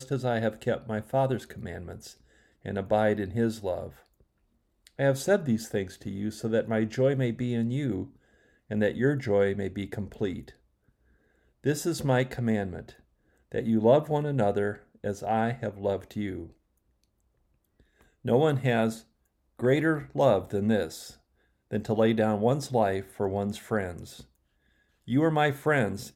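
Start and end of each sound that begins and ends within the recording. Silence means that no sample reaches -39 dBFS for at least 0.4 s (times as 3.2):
2.65–3.89
4.87–8.06
8.7–10.49
11.64–12.9
13.52–16.47
18.25–18.98
19.59–21.11
21.71–24.21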